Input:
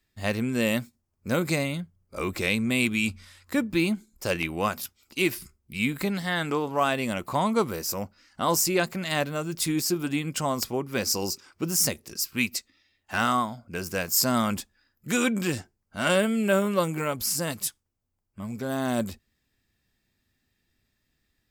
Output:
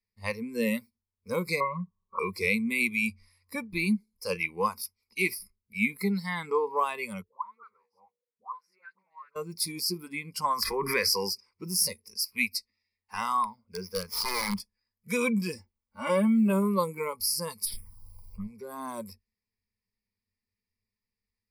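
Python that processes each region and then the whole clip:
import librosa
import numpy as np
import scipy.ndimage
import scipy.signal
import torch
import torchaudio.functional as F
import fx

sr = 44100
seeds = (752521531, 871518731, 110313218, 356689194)

y = fx.chain(x, sr, fx.lowpass_res(hz=1100.0, q=10.0),
    fx.comb(ms=5.3, depth=0.62), at=(1.6, 2.19))
y = fx.chain(y, sr, fx.hum_notches(base_hz=60, count=8),
    fx.auto_wah(base_hz=400.0, top_hz=1500.0, q=11.0, full_db=-21.0, direction='up'),
    fx.dispersion(late='highs', ms=75.0, hz=840.0), at=(7.22, 9.36))
y = fx.chain(y, sr, fx.peak_eq(hz=1700.0, db=13.5, octaves=0.77),
    fx.pre_swell(db_per_s=30.0), at=(10.44, 11.3))
y = fx.chain(y, sr, fx.median_filter(points=5),
    fx.overflow_wrap(gain_db=20.0), at=(13.43, 14.6))
y = fx.chain(y, sr, fx.high_shelf(hz=2700.0, db=-9.0),
    fx.quant_companded(bits=8),
    fx.comb(ms=3.5, depth=0.73), at=(15.54, 16.5))
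y = fx.chain(y, sr, fx.halfwave_gain(db=-3.0),
    fx.env_phaser(low_hz=280.0, high_hz=1200.0, full_db=-33.0),
    fx.env_flatten(amount_pct=100), at=(17.65, 18.47))
y = fx.ripple_eq(y, sr, per_octave=0.88, db=17)
y = fx.noise_reduce_blind(y, sr, reduce_db=14)
y = y * librosa.db_to_amplitude(-5.5)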